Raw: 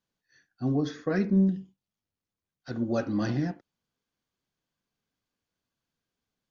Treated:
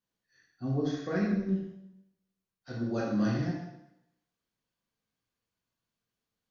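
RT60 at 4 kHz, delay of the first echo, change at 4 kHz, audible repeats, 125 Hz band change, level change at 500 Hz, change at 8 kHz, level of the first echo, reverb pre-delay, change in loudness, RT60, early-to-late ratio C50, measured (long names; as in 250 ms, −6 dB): 0.80 s, no echo audible, −2.0 dB, no echo audible, −3.0 dB, −3.0 dB, can't be measured, no echo audible, 10 ms, −3.5 dB, 0.85 s, 2.0 dB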